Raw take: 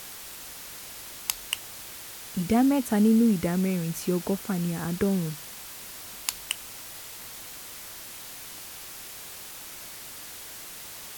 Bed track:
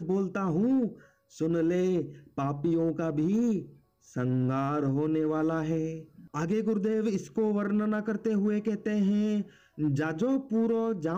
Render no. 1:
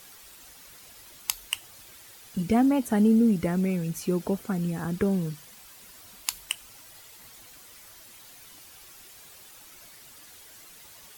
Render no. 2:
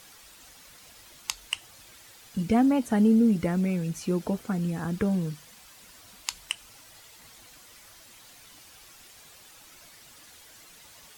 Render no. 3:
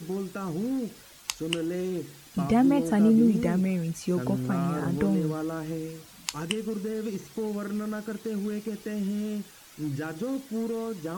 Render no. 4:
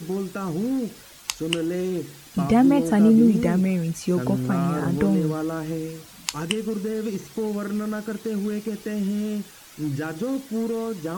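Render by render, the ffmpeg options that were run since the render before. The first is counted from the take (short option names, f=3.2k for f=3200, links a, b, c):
-af "afftdn=nr=10:nf=-42"
-filter_complex "[0:a]bandreject=f=390:w=12,acrossover=split=9200[a][b];[b]acompressor=threshold=-55dB:ratio=4:attack=1:release=60[c];[a][c]amix=inputs=2:normalize=0"
-filter_complex "[1:a]volume=-4dB[a];[0:a][a]amix=inputs=2:normalize=0"
-af "volume=4.5dB,alimiter=limit=-3dB:level=0:latency=1"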